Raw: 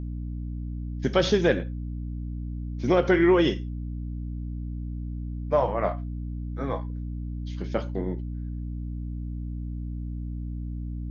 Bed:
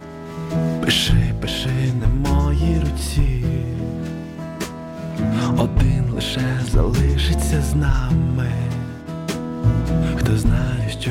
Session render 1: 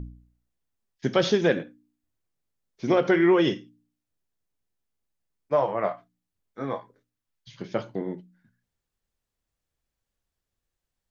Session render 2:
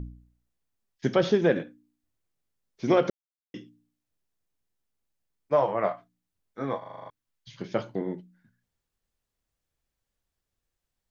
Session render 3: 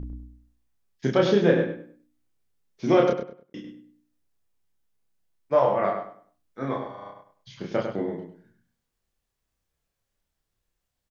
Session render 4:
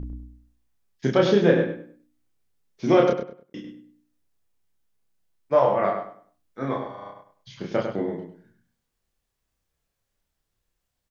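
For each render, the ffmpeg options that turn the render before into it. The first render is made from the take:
-af "bandreject=f=60:t=h:w=4,bandreject=f=120:t=h:w=4,bandreject=f=180:t=h:w=4,bandreject=f=240:t=h:w=4,bandreject=f=300:t=h:w=4"
-filter_complex "[0:a]asettb=1/sr,asplit=3[a][b][c];[a]atrim=end=1.154[d];[b]atrim=start=1.15:end=1.56,asetpts=PTS-STARTPTS,afade=t=in:d=0.004:c=qsin,afade=t=out:st=0.406:d=0.004:c=qsin,highshelf=f=2.5k:g=-10[e];[c]atrim=start=1.556[f];[d][e]acrossfade=d=0.004:c1=hsin:c2=qsin[g];[g][f]acrossfade=d=0.004:c1=qsin:c2=hsin,asplit=11[h][i][j][k][l][m][n][o][p][q][r];[h]atrim=end=3.1,asetpts=PTS-STARTPTS,afade=t=out:st=3.096:d=0.004:c=hsin[s];[i]atrim=start=3.1:end=3.54,asetpts=PTS-STARTPTS,volume=0[t];[j]atrim=start=3.54:end=6.822,asetpts=PTS-STARTPTS,afade=t=in:d=0.004:c=hsin[u];[k]atrim=start=6.778:end=6.822[v];[l]atrim=start=6.778:end=6.822[w];[m]atrim=start=6.778:end=6.822[x];[n]atrim=start=6.778:end=6.822[y];[o]atrim=start=6.778:end=6.822[z];[p]atrim=start=6.778:end=6.822[aa];[q]atrim=start=6.778:end=6.822[ab];[r]atrim=start=7.098[ac];[s][t][u]concat=n=3:v=0:a=1[ad];[ad][v]acrossfade=d=0.004:c1=hsin:c2=hsin[ae];[ae][w]acrossfade=d=0.004:c1=hsin:c2=hsin[af];[af][x]acrossfade=d=0.004:c1=hsin:c2=hsin[ag];[ag][y]acrossfade=d=0.004:c1=hsin:c2=hsin[ah];[ah][z]acrossfade=d=0.004:c1=hsin:c2=hsin[ai];[ai][aa]acrossfade=d=0.004:c1=hsin:c2=hsin[aj];[aj][ab]acrossfade=d=0.004:c1=hsin:c2=hsin[ak];[ak][ac]acrossfade=d=0.004:c1=hsin:c2=hsin"
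-filter_complex "[0:a]asplit=2[a][b];[b]adelay=30,volume=-2dB[c];[a][c]amix=inputs=2:normalize=0,asplit=2[d][e];[e]adelay=100,lowpass=f=3k:p=1,volume=-6dB,asplit=2[f][g];[g]adelay=100,lowpass=f=3k:p=1,volume=0.28,asplit=2[h][i];[i]adelay=100,lowpass=f=3k:p=1,volume=0.28,asplit=2[j][k];[k]adelay=100,lowpass=f=3k:p=1,volume=0.28[l];[f][h][j][l]amix=inputs=4:normalize=0[m];[d][m]amix=inputs=2:normalize=0"
-af "volume=1.5dB"

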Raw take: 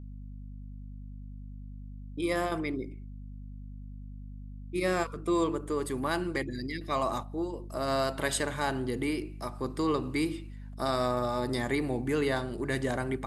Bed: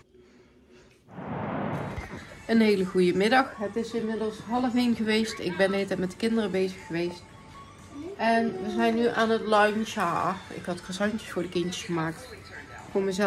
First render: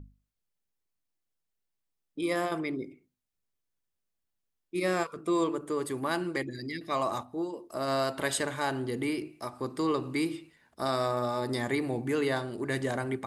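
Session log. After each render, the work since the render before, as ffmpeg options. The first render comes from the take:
-af "bandreject=f=50:t=h:w=6,bandreject=f=100:t=h:w=6,bandreject=f=150:t=h:w=6,bandreject=f=200:t=h:w=6,bandreject=f=250:t=h:w=6"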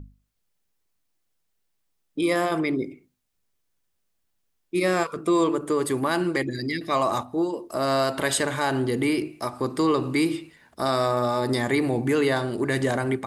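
-filter_complex "[0:a]asplit=2[a][b];[b]alimiter=level_in=1.5dB:limit=-24dB:level=0:latency=1:release=65,volume=-1.5dB,volume=0dB[c];[a][c]amix=inputs=2:normalize=0,dynaudnorm=f=190:g=3:m=3dB"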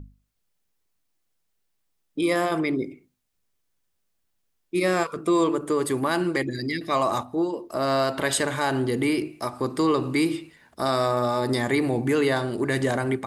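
-filter_complex "[0:a]asettb=1/sr,asplit=3[a][b][c];[a]atrim=end=7.354[d];[b]atrim=start=7.35:end=8.33,asetpts=PTS-STARTPTS,afade=t=in:d=0.004:c=qsin,afade=t=out:st=0.976:d=0.004:c=qsin,equalizer=f=9.2k:t=o:w=1:g=-5.5[e];[c]atrim=start=8.326[f];[d][e]acrossfade=d=0.004:c1=hsin:c2=qsin[g];[g][f]acrossfade=d=0.004:c1=qsin:c2=hsin"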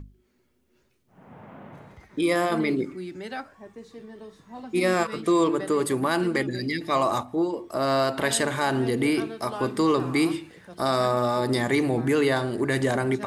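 -filter_complex "[1:a]volume=-13.5dB[a];[0:a][a]amix=inputs=2:normalize=0"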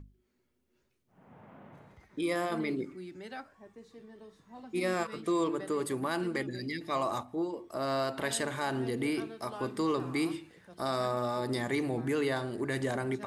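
-af "volume=-8.5dB"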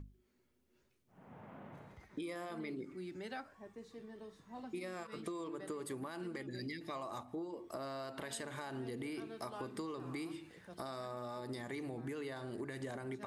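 -af "alimiter=level_in=2.5dB:limit=-24dB:level=0:latency=1:release=328,volume=-2.5dB,acompressor=threshold=-40dB:ratio=6"

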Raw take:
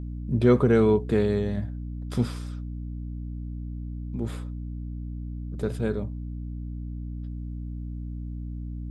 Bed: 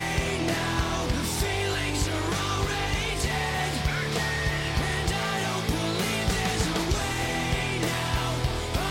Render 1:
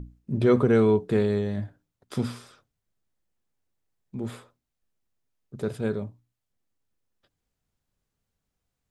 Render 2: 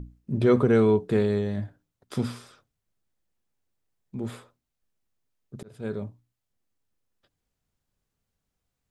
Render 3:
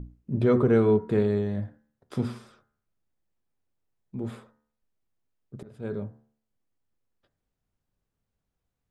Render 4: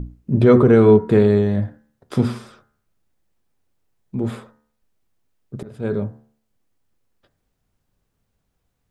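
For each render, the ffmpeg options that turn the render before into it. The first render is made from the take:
-af "bandreject=f=60:t=h:w=6,bandreject=f=120:t=h:w=6,bandreject=f=180:t=h:w=6,bandreject=f=240:t=h:w=6,bandreject=f=300:t=h:w=6"
-filter_complex "[0:a]asplit=2[a][b];[a]atrim=end=5.63,asetpts=PTS-STARTPTS,afade=t=out:st=5.626:d=0.004:c=hsin[c];[b]atrim=start=5.63,asetpts=PTS-STARTPTS,afade=t=in:d=0.43[d];[c][d]concat=n=2:v=0:a=1"
-af "highshelf=f=2.5k:g=-9,bandreject=f=73.49:t=h:w=4,bandreject=f=146.98:t=h:w=4,bandreject=f=220.47:t=h:w=4,bandreject=f=293.96:t=h:w=4,bandreject=f=367.45:t=h:w=4,bandreject=f=440.94:t=h:w=4,bandreject=f=514.43:t=h:w=4,bandreject=f=587.92:t=h:w=4,bandreject=f=661.41:t=h:w=4,bandreject=f=734.9:t=h:w=4,bandreject=f=808.39:t=h:w=4,bandreject=f=881.88:t=h:w=4,bandreject=f=955.37:t=h:w=4,bandreject=f=1.02886k:t=h:w=4,bandreject=f=1.10235k:t=h:w=4,bandreject=f=1.17584k:t=h:w=4,bandreject=f=1.24933k:t=h:w=4,bandreject=f=1.32282k:t=h:w=4,bandreject=f=1.39631k:t=h:w=4,bandreject=f=1.4698k:t=h:w=4,bandreject=f=1.54329k:t=h:w=4,bandreject=f=1.61678k:t=h:w=4,bandreject=f=1.69027k:t=h:w=4,bandreject=f=1.76376k:t=h:w=4,bandreject=f=1.83725k:t=h:w=4,bandreject=f=1.91074k:t=h:w=4,bandreject=f=1.98423k:t=h:w=4,bandreject=f=2.05772k:t=h:w=4,bandreject=f=2.13121k:t=h:w=4"
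-af "volume=10dB,alimiter=limit=-3dB:level=0:latency=1"

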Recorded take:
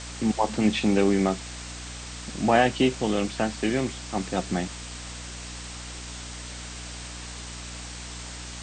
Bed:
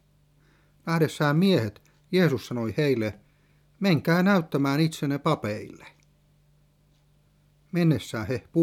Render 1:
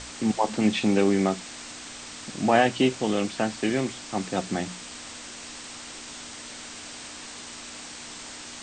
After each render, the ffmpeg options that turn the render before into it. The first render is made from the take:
-af "bandreject=f=60:t=h:w=6,bandreject=f=120:t=h:w=6,bandreject=f=180:t=h:w=6"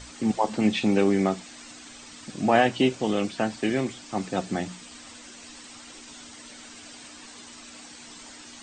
-af "afftdn=nr=9:nf=-41"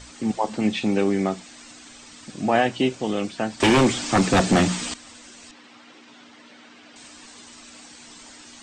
-filter_complex "[0:a]asettb=1/sr,asplit=3[a][b][c];[a]atrim=end=3.604[d];[b]atrim=start=3.6:end=4.94,asetpts=PTS-STARTPTS,afade=t=in:d=0.004:c=qsin,afade=t=out:st=1.336:d=0.004:c=qsin,aeval=exprs='0.266*sin(PI/2*3.55*val(0)/0.266)':c=same[e];[c]atrim=start=4.936[f];[d][e]acrossfade=d=0.004:c1=hsin:c2=qsin[g];[g][f]acrossfade=d=0.004:c1=qsin:c2=hsin,asettb=1/sr,asplit=3[h][i][j];[h]atrim=end=5.514[k];[i]atrim=start=5.51:end=6.96,asetpts=PTS-STARTPTS,afade=t=in:d=0.004:c=qsin,afade=t=out:st=1.446:d=0.004:c=qsin,highpass=160,lowpass=3.2k[l];[j]atrim=start=6.956[m];[k][l]acrossfade=d=0.004:c1=hsin:c2=qsin[n];[n][m]acrossfade=d=0.004:c1=qsin:c2=hsin"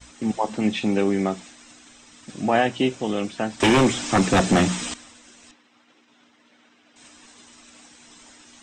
-af "agate=range=-33dB:threshold=-40dB:ratio=3:detection=peak,bandreject=f=4.5k:w=9.5"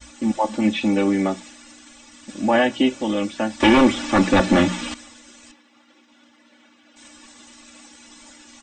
-filter_complex "[0:a]acrossover=split=4200[a][b];[b]acompressor=threshold=-42dB:ratio=4:attack=1:release=60[c];[a][c]amix=inputs=2:normalize=0,aecho=1:1:3.5:0.91"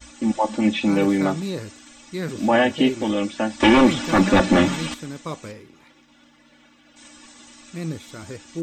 -filter_complex "[1:a]volume=-7.5dB[a];[0:a][a]amix=inputs=2:normalize=0"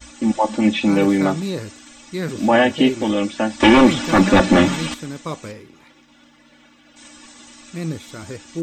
-af "volume=3dB"

